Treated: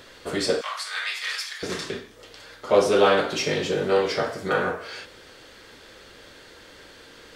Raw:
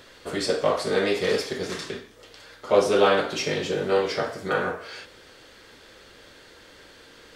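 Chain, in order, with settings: 0.61–1.63 s: high-pass 1.2 kHz 24 dB/octave; in parallel at -11 dB: saturation -22.5 dBFS, distortion -7 dB

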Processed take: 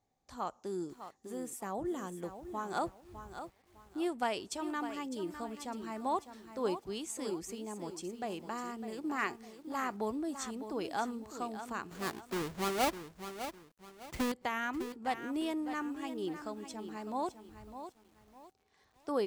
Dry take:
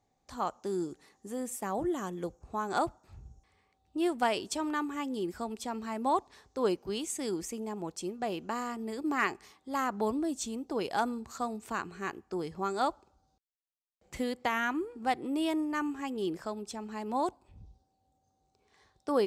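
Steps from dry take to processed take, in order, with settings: 11.91–14.32 s: square wave that keeps the level; bit-crushed delay 605 ms, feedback 35%, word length 9-bit, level -10 dB; trim -5 dB

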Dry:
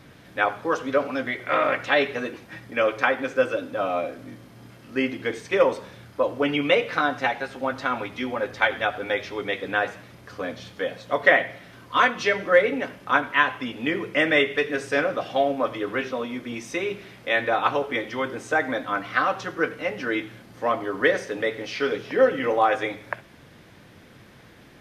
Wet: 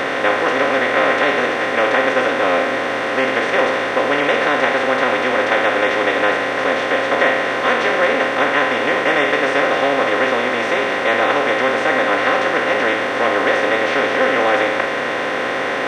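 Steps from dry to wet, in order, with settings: spectral levelling over time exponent 0.2; time stretch by phase-locked vocoder 0.64×; trim -3.5 dB

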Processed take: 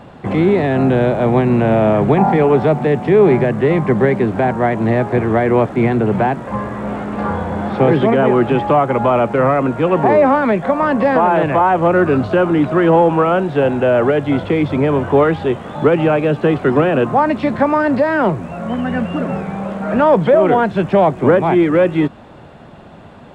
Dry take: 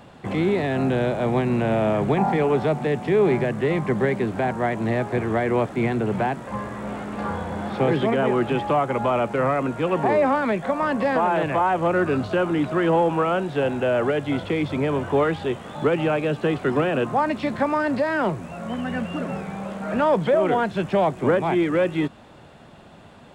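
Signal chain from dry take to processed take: treble shelf 3.1 kHz -11 dB; trim +8.5 dB

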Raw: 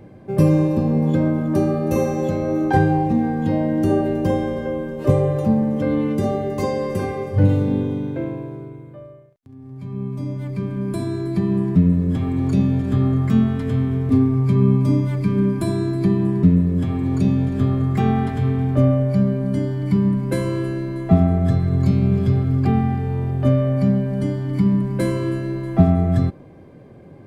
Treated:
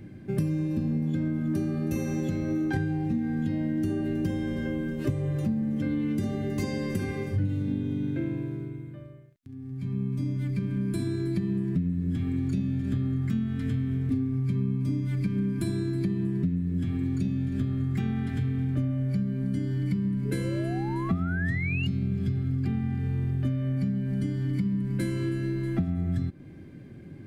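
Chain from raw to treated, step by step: painted sound rise, 20.25–21.87 s, 400–2900 Hz -24 dBFS; high-order bell 710 Hz -12.5 dB; compression 6:1, threshold -25 dBFS, peak gain reduction 15.5 dB

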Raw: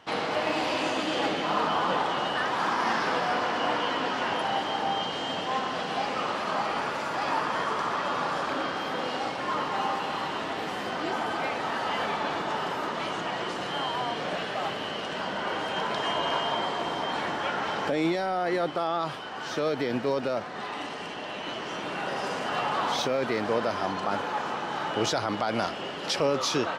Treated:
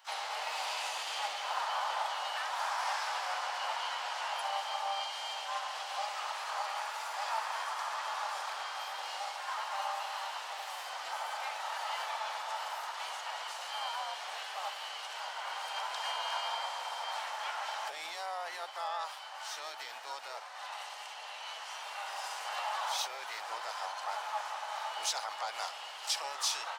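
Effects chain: resonant high-pass 830 Hz, resonance Q 4.6; harmony voices -5 st -8 dB, +5 st -16 dB, +7 st -14 dB; differentiator

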